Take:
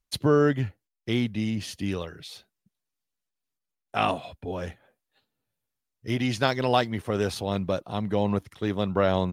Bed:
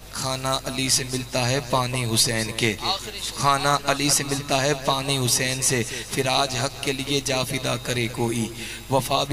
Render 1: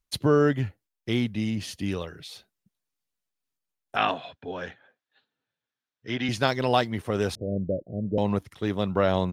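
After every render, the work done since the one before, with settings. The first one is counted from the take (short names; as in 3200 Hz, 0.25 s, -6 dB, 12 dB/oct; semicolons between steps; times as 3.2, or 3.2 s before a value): 3.96–6.29 speaker cabinet 170–5800 Hz, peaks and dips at 200 Hz -5 dB, 340 Hz -3 dB, 580 Hz -3 dB, 1600 Hz +8 dB, 3500 Hz +4 dB, 4900 Hz -4 dB; 7.35–8.18 steep low-pass 610 Hz 72 dB/oct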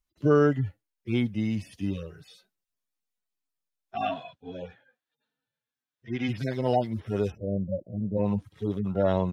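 median-filter separation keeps harmonic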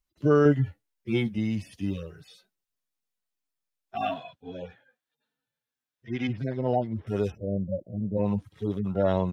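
0.44–1.38 doubler 14 ms -3.5 dB; 1.88–4.19 short-mantissa float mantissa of 6-bit; 6.27–7.07 LPF 1000 Hz 6 dB/oct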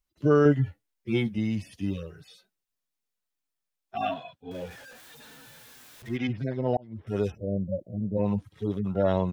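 4.51–6.17 zero-crossing step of -43 dBFS; 6.77–7.18 fade in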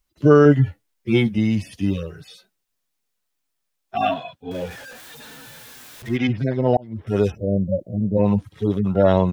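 gain +8.5 dB; limiter -3 dBFS, peak gain reduction 3 dB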